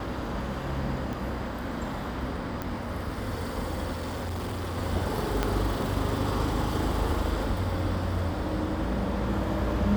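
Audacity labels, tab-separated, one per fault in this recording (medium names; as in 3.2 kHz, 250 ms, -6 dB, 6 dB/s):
1.130000	1.130000	pop
2.620000	2.620000	pop -18 dBFS
3.920000	4.780000	clipped -29.5 dBFS
5.430000	5.430000	pop -11 dBFS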